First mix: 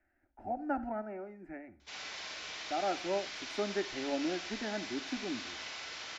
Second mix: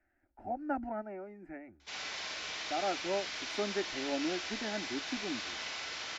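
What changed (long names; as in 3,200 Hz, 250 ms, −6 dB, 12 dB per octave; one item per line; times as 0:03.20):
speech: send off
background +3.0 dB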